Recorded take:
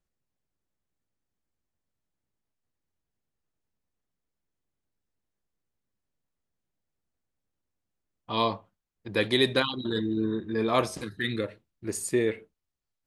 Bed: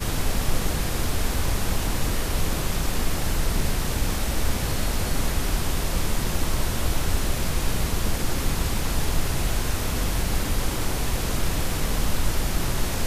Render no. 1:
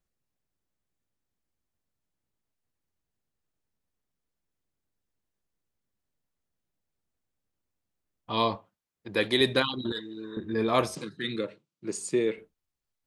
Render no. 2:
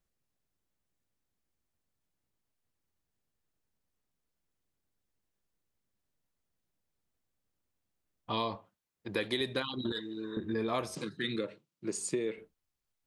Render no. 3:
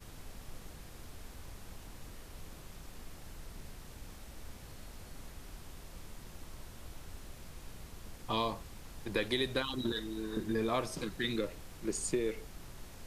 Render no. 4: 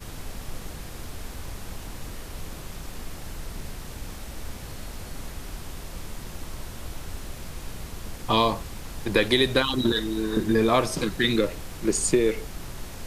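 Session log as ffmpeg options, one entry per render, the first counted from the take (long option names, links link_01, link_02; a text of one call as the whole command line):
ffmpeg -i in.wav -filter_complex "[0:a]asettb=1/sr,asplit=3[link_01][link_02][link_03];[link_01]atrim=end=8.554[link_04];[link_02]atrim=start=8.55:end=9.41,asetpts=PTS-STARTPTS,afade=type=in:duration=0.004:curve=qsin,afade=type=out:start_time=0.856:duration=0.004:curve=qsin,highpass=frequency=170:poles=1[link_05];[link_03]atrim=start=9.406[link_06];[link_04][link_05]acrossfade=duration=0.004:curve1=hsin:curve2=qsin[link_07];[link_07][link_06]acrossfade=duration=0.004:curve1=qsin:curve2=hsin,asettb=1/sr,asplit=3[link_08][link_09][link_10];[link_08]atrim=end=9.924[link_11];[link_09]atrim=start=9.92:end=10.37,asetpts=PTS-STARTPTS,afade=type=in:duration=0.004:curve=qsin,afade=type=out:start_time=0.446:duration=0.004:curve=qsin,highpass=frequency=1200:poles=1[link_12];[link_10]atrim=start=10.366[link_13];[link_11][link_12]acrossfade=duration=0.004:curve1=hsin:curve2=qsin[link_14];[link_14][link_13]acrossfade=duration=0.004:curve1=qsin:curve2=hsin,asettb=1/sr,asplit=3[link_15][link_16][link_17];[link_15]atrim=end=10.954[link_18];[link_16]atrim=start=10.95:end=12.38,asetpts=PTS-STARTPTS,afade=type=in:duration=0.004:curve=qsin,afade=type=out:start_time=1.426:duration=0.004:curve=qsin,highpass=frequency=150:width=0.5412,highpass=frequency=150:width=1.3066,equalizer=frequency=150:width_type=q:width=4:gain=6,equalizer=frequency=240:width_type=q:width=4:gain=-3,equalizer=frequency=710:width_type=q:width=4:gain=-5,equalizer=frequency=1800:width_type=q:width=4:gain=-7,lowpass=frequency=8400:width=0.5412,lowpass=frequency=8400:width=1.3066[link_19];[link_17]atrim=start=12.376[link_20];[link_18][link_19]acrossfade=duration=0.004:curve1=hsin:curve2=qsin[link_21];[link_21][link_20]acrossfade=duration=0.004:curve1=qsin:curve2=hsin" out.wav
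ffmpeg -i in.wav -af "acompressor=threshold=-30dB:ratio=5" out.wav
ffmpeg -i in.wav -i bed.wav -filter_complex "[1:a]volume=-24.5dB[link_01];[0:a][link_01]amix=inputs=2:normalize=0" out.wav
ffmpeg -i in.wav -af "volume=12dB" out.wav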